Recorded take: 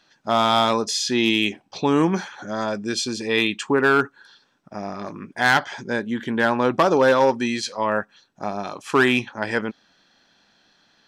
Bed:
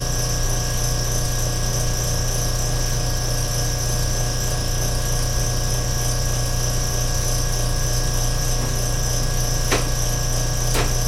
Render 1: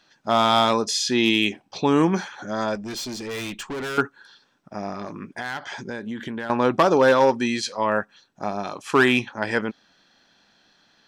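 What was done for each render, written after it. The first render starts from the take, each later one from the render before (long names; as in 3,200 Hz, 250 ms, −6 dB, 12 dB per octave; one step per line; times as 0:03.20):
0:02.75–0:03.98: tube saturation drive 28 dB, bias 0.3
0:04.93–0:06.50: downward compressor 8 to 1, threshold −27 dBFS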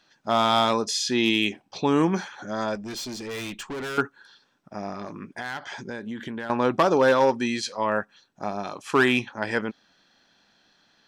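level −2.5 dB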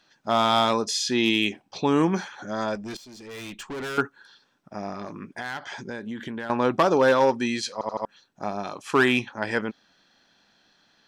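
0:02.97–0:03.83: fade in, from −16.5 dB
0:07.73: stutter in place 0.08 s, 4 plays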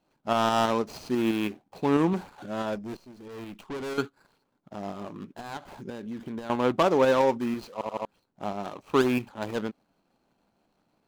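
running median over 25 samples
shaped tremolo saw up 6.1 Hz, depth 35%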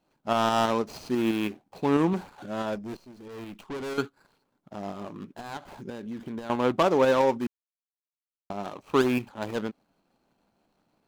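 0:07.47–0:08.50: silence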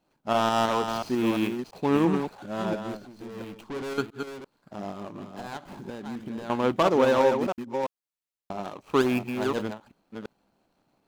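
delay that plays each chunk backwards 342 ms, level −6 dB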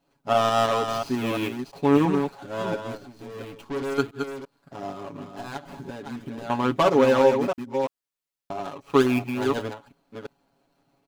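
comb filter 7.2 ms, depth 79%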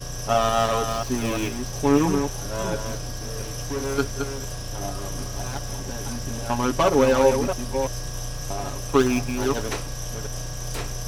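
mix in bed −10.5 dB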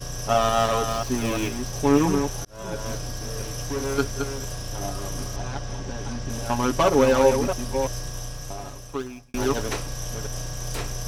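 0:02.45–0:02.91: fade in
0:05.36–0:06.30: high-frequency loss of the air 90 metres
0:07.91–0:09.34: fade out linear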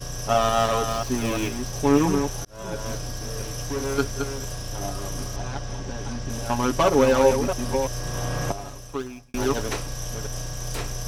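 0:07.30–0:08.52: multiband upward and downward compressor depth 100%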